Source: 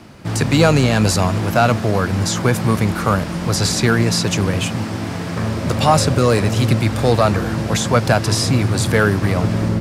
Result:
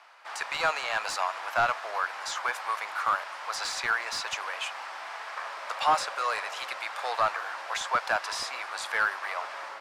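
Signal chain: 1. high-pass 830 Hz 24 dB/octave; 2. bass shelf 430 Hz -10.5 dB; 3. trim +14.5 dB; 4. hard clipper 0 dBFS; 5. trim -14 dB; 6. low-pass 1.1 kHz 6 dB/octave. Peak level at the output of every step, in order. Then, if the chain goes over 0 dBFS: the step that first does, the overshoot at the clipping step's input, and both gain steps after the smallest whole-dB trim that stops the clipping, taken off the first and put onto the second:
-6.0 dBFS, -7.0 dBFS, +7.5 dBFS, 0.0 dBFS, -14.0 dBFS, -14.5 dBFS; step 3, 7.5 dB; step 3 +6.5 dB, step 5 -6 dB

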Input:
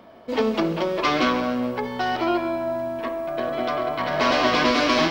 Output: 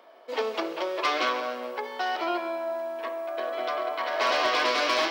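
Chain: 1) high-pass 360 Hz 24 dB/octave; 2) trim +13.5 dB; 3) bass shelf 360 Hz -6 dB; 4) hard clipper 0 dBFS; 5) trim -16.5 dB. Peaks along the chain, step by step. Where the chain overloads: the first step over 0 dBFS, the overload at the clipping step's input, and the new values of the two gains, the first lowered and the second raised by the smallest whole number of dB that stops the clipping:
-7.5 dBFS, +6.0 dBFS, +4.5 dBFS, 0.0 dBFS, -16.5 dBFS; step 2, 4.5 dB; step 2 +8.5 dB, step 5 -11.5 dB

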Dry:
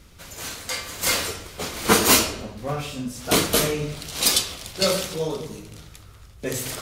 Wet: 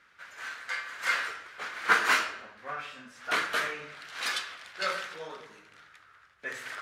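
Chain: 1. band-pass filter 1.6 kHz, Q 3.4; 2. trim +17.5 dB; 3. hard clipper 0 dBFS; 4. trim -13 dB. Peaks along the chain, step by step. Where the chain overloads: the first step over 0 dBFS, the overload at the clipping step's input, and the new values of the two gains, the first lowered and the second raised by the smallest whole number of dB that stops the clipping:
-11.5 dBFS, +6.0 dBFS, 0.0 dBFS, -13.0 dBFS; step 2, 6.0 dB; step 2 +11.5 dB, step 4 -7 dB

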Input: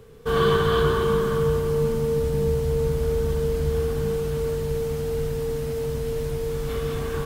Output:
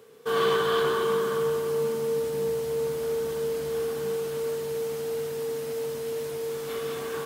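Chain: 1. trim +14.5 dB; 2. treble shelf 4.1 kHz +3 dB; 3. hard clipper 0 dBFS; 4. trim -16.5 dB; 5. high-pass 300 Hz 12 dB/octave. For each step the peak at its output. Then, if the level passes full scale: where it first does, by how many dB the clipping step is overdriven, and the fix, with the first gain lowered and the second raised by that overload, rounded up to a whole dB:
+6.5 dBFS, +6.5 dBFS, 0.0 dBFS, -16.5 dBFS, -13.0 dBFS; step 1, 6.5 dB; step 1 +7.5 dB, step 4 -9.5 dB

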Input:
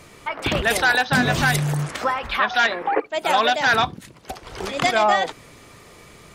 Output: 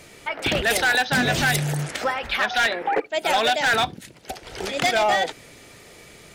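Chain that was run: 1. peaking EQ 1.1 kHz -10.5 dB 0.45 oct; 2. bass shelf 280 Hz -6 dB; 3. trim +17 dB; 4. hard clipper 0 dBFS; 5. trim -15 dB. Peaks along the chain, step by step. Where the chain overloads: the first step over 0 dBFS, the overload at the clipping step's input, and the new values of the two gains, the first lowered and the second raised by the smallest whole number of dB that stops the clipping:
-7.5 dBFS, -8.5 dBFS, +8.5 dBFS, 0.0 dBFS, -15.0 dBFS; step 3, 8.5 dB; step 3 +8 dB, step 5 -6 dB

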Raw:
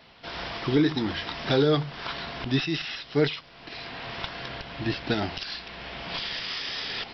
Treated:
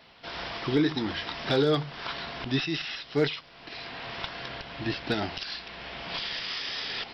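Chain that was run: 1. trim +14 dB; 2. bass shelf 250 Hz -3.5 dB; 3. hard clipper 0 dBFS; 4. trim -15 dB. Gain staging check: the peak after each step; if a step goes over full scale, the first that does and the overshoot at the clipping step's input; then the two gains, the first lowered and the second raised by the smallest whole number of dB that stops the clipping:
+3.5 dBFS, +3.0 dBFS, 0.0 dBFS, -15.0 dBFS; step 1, 3.0 dB; step 1 +11 dB, step 4 -12 dB

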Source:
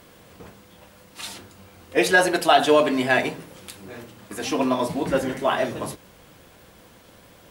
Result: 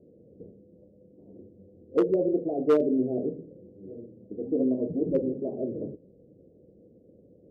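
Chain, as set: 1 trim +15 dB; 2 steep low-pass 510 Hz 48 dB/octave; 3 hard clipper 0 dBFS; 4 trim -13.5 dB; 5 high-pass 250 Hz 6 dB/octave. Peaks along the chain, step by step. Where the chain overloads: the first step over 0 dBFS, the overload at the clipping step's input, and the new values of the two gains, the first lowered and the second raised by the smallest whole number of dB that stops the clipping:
+11.0 dBFS, +6.5 dBFS, 0.0 dBFS, -13.5 dBFS, -11.5 dBFS; step 1, 6.5 dB; step 1 +8 dB, step 4 -6.5 dB

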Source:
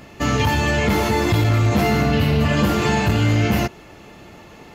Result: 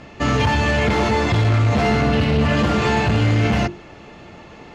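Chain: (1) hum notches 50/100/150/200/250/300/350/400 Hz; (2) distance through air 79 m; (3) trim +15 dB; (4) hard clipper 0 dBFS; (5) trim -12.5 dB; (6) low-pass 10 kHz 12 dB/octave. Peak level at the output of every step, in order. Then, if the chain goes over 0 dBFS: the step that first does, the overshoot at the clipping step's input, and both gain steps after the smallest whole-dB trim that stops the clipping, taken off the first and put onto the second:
-7.5 dBFS, -8.0 dBFS, +7.0 dBFS, 0.0 dBFS, -12.5 dBFS, -12.0 dBFS; step 3, 7.0 dB; step 3 +8 dB, step 5 -5.5 dB

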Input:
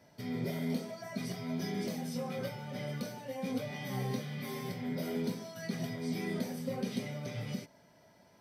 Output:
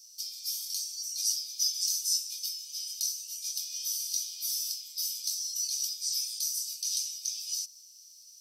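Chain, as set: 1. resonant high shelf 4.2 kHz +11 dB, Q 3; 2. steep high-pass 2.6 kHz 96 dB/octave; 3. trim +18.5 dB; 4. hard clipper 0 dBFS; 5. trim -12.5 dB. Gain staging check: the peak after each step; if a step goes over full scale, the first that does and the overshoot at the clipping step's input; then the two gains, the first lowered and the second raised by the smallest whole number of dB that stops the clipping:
-19.0 dBFS, -20.0 dBFS, -1.5 dBFS, -1.5 dBFS, -14.0 dBFS; nothing clips

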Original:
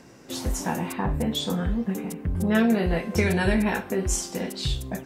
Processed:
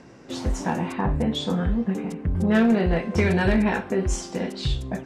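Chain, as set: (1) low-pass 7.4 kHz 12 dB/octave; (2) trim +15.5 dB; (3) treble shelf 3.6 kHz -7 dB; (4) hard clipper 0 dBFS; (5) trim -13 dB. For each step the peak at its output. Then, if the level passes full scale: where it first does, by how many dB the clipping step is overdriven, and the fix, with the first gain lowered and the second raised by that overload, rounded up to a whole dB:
-9.5 dBFS, +6.0 dBFS, +5.5 dBFS, 0.0 dBFS, -13.0 dBFS; step 2, 5.5 dB; step 2 +9.5 dB, step 5 -7 dB

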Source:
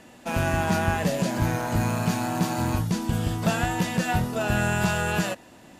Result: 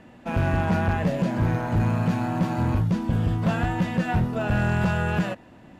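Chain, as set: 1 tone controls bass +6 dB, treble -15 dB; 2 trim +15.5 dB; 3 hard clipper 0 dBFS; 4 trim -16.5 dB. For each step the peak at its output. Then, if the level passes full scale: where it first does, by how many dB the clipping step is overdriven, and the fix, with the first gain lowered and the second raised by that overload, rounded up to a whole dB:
-7.5 dBFS, +8.0 dBFS, 0.0 dBFS, -16.5 dBFS; step 2, 8.0 dB; step 2 +7.5 dB, step 4 -8.5 dB

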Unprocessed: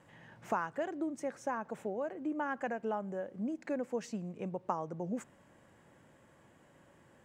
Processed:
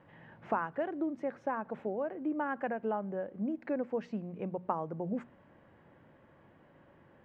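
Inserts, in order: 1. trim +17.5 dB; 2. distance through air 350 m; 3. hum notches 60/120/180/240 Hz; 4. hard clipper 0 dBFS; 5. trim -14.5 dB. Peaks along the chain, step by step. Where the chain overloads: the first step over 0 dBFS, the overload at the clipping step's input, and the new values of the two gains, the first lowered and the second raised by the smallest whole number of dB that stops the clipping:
-1.0 dBFS, -2.0 dBFS, -2.5 dBFS, -2.5 dBFS, -17.0 dBFS; nothing clips

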